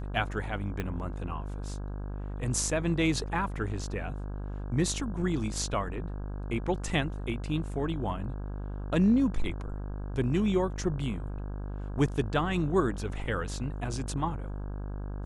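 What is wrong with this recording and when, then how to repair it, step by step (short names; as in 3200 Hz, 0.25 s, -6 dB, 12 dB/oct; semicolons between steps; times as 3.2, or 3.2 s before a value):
buzz 50 Hz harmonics 33 -36 dBFS
0.8 pop -19 dBFS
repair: de-click; de-hum 50 Hz, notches 33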